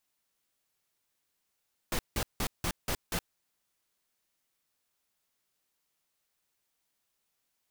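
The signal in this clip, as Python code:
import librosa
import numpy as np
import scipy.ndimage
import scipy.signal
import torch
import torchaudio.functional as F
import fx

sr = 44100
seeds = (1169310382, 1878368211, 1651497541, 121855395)

y = fx.noise_burst(sr, seeds[0], colour='pink', on_s=0.07, off_s=0.17, bursts=6, level_db=-31.0)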